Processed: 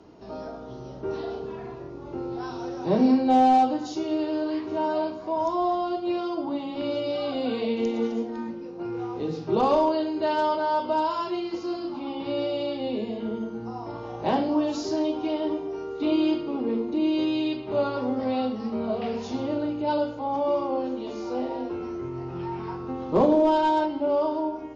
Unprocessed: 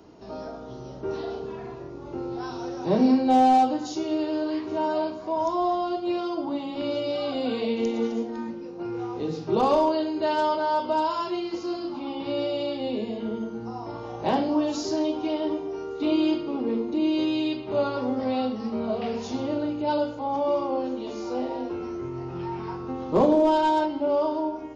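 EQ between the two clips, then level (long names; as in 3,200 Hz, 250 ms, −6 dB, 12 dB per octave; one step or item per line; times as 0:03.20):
high-frequency loss of the air 54 metres
0.0 dB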